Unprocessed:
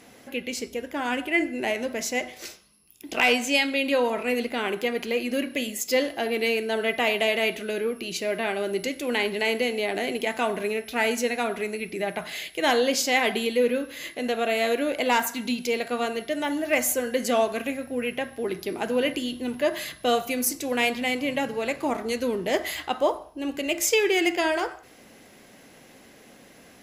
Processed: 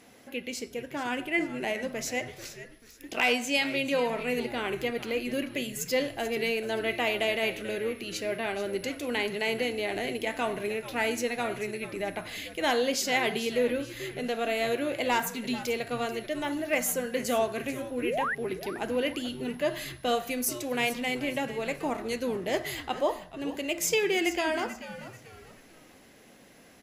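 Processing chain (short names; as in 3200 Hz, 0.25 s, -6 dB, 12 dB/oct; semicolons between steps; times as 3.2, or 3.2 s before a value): painted sound rise, 18.02–18.35, 270–2100 Hz -25 dBFS; frequency-shifting echo 0.437 s, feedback 35%, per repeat -110 Hz, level -13.5 dB; gain -4.5 dB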